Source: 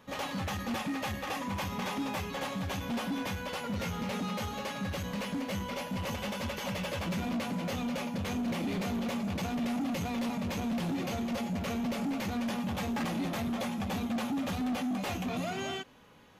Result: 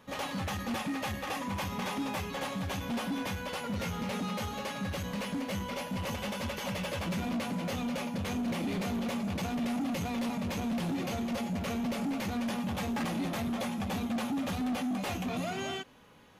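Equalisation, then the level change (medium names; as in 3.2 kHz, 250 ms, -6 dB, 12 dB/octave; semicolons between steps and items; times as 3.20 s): peaking EQ 9.7 kHz +3.5 dB 0.27 oct; 0.0 dB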